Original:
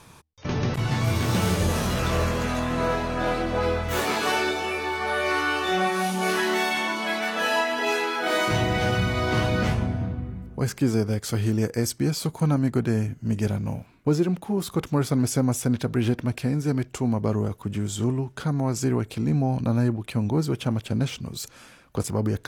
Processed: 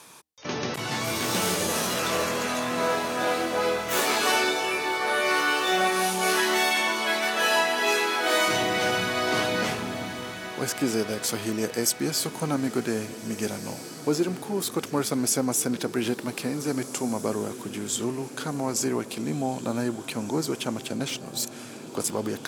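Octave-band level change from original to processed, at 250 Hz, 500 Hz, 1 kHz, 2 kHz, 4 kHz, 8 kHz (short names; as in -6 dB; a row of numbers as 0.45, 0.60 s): -3.5, 0.0, +0.5, +1.5, +3.5, +6.5 dB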